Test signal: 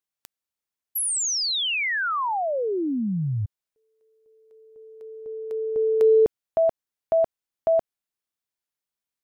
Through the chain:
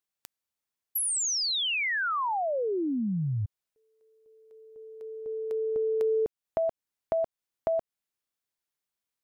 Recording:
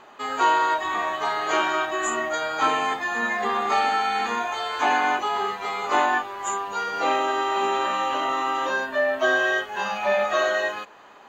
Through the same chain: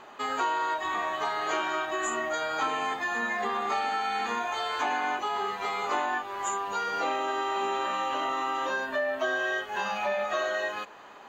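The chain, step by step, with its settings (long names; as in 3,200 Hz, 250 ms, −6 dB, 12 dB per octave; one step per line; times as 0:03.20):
downward compressor 3 to 1, threshold −28 dBFS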